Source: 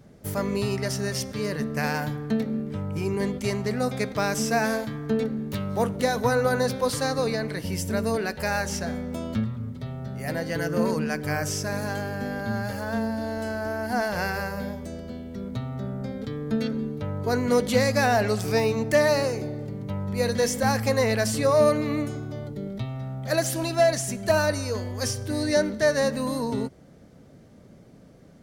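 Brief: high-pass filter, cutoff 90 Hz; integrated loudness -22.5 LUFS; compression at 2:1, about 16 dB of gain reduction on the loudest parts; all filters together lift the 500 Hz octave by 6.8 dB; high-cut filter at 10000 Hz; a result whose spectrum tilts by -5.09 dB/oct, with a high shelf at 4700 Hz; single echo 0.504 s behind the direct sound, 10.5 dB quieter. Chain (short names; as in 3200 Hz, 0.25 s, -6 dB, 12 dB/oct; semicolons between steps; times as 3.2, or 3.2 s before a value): HPF 90 Hz; LPF 10000 Hz; bell 500 Hz +8 dB; high shelf 4700 Hz +4 dB; compressor 2:1, threshold -41 dBFS; echo 0.504 s -10.5 dB; gain +12 dB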